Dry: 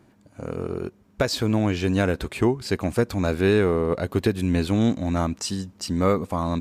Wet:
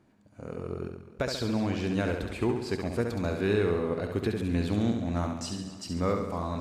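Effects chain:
high-shelf EQ 11,000 Hz −8.5 dB
flutter between parallel walls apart 11.8 metres, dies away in 0.74 s
feedback echo with a swinging delay time 254 ms, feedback 58%, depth 90 cents, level −17 dB
level −8 dB

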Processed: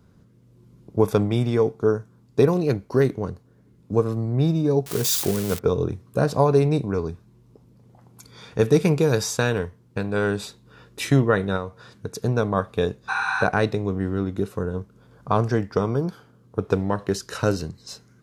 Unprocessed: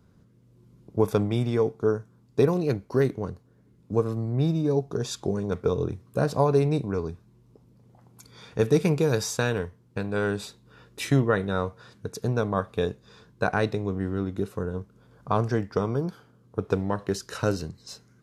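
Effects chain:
0:04.86–0:05.59: spike at every zero crossing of −20 dBFS
0:11.56–0:12.24: downward compressor 5 to 1, threshold −28 dBFS, peak gain reduction 7 dB
0:13.11–0:13.40: healed spectral selection 770–11,000 Hz after
level +3.5 dB

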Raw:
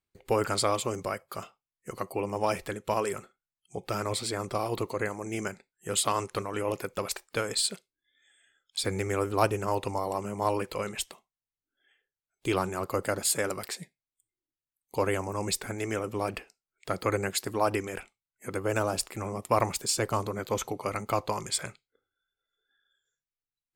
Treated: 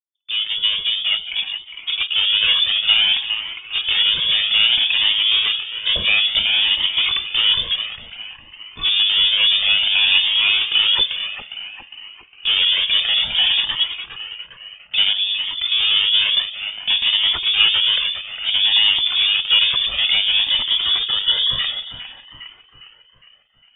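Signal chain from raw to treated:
fade in at the beginning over 3.43 s
spectral tilt −4 dB per octave
brickwall limiter −15.5 dBFS, peak gain reduction 9.5 dB
0:15.13–0:15.72: output level in coarse steps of 22 dB
leveller curve on the samples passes 5
hollow resonant body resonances 620/920 Hz, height 10 dB, ringing for 20 ms
0:20.50–0:21.59: time-frequency box erased 600–1,400 Hz
echo with a time of its own for lows and highs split 460 Hz, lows 102 ms, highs 407 ms, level −8.5 dB
voice inversion scrambler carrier 3,500 Hz
flanger whose copies keep moving one way rising 0.58 Hz
level +3 dB

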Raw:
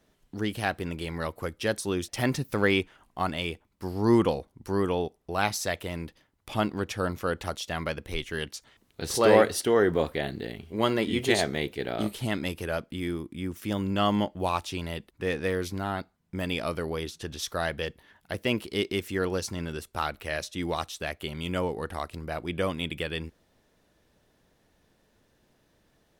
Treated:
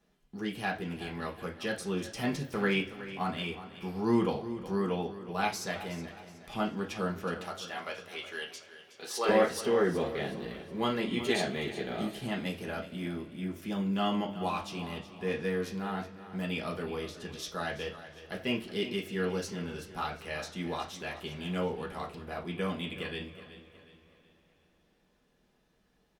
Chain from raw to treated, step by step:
0:07.39–0:09.29: high-pass filter 490 Hz 12 dB per octave
repeating echo 369 ms, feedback 38%, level −14 dB
convolution reverb, pre-delay 3 ms, DRR −2.5 dB
level −9 dB

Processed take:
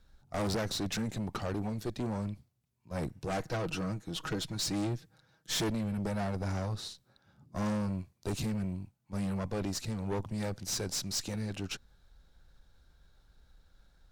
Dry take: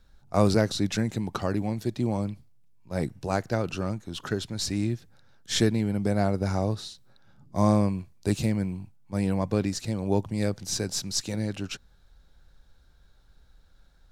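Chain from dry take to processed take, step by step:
0:03.26–0:05.70: comb filter 6.3 ms, depth 66%
tube saturation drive 29 dB, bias 0.6

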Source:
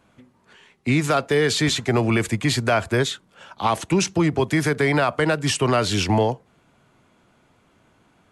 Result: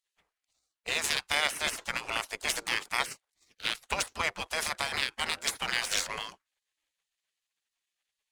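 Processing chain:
gate on every frequency bin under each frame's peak −20 dB weak
power curve on the samples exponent 1.4
level +7 dB

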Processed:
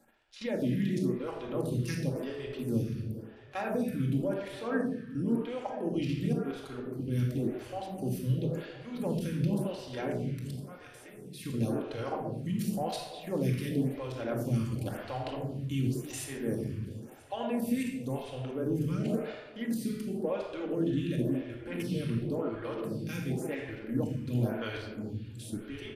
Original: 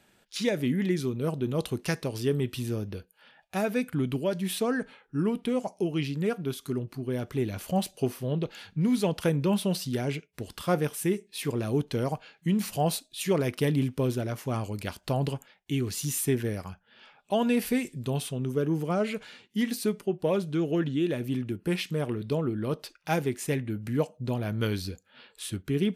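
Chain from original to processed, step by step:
0:10.51–0:11.15: guitar amp tone stack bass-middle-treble 5-5-5
output level in coarse steps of 16 dB
repeating echo 983 ms, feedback 57%, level −21 dB
rectangular room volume 1,300 cubic metres, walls mixed, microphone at 2.2 metres
phaser with staggered stages 0.94 Hz

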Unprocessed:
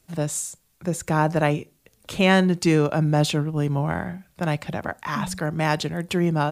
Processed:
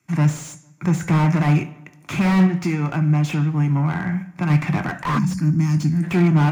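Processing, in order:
wavefolder on the positive side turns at −13 dBFS
brickwall limiter −14.5 dBFS, peak gain reduction 6 dB
0:02.46–0:04.50: downward compressor 2.5 to 1, threshold −31 dBFS, peak gain reduction 8.5 dB
leveller curve on the samples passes 2
octave-band graphic EQ 125/500/2,000/4,000/8,000 Hz +4/−9/+9/−10/−4 dB
feedback echo with a low-pass in the loop 150 ms, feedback 53%, low-pass 2,300 Hz, level −23.5 dB
convolution reverb RT60 0.55 s, pre-delay 3 ms, DRR 7.5 dB
0:05.18–0:06.03: gain on a spectral selection 340–4,200 Hz −17 dB
high-pass filter 86 Hz
low-shelf EQ 160 Hz −10.5 dB
slew-rate limiting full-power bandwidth 130 Hz
level −2 dB

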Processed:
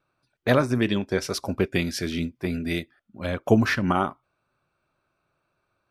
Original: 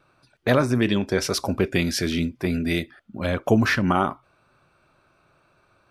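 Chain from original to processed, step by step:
expander for the loud parts 1.5 to 1, over −41 dBFS
level +1 dB

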